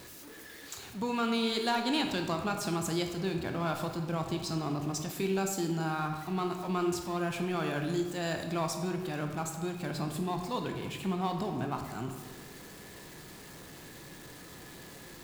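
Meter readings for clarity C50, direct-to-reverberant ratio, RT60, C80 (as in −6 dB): 6.0 dB, 4.0 dB, 1.4 s, 8.0 dB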